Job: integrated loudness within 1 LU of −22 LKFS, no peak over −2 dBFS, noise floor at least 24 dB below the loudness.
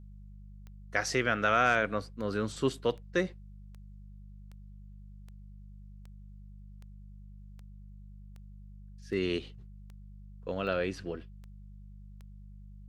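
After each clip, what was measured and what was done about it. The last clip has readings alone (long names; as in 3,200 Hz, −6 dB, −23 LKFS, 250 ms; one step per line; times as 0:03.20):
number of clicks 16; mains hum 50 Hz; hum harmonics up to 200 Hz; level of the hum −46 dBFS; integrated loudness −31.5 LKFS; sample peak −11.5 dBFS; target loudness −22.0 LKFS
→ click removal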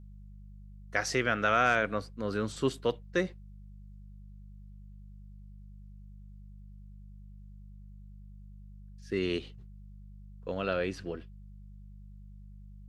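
number of clicks 0; mains hum 50 Hz; hum harmonics up to 200 Hz; level of the hum −46 dBFS
→ hum removal 50 Hz, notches 4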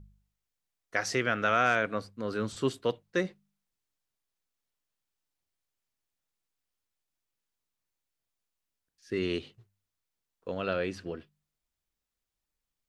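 mains hum none found; integrated loudness −31.0 LKFS; sample peak −11.5 dBFS; target loudness −22.0 LKFS
→ level +9 dB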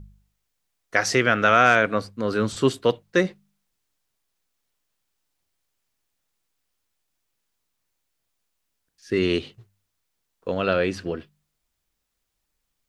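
integrated loudness −22.0 LKFS; sample peak −2.5 dBFS; background noise floor −78 dBFS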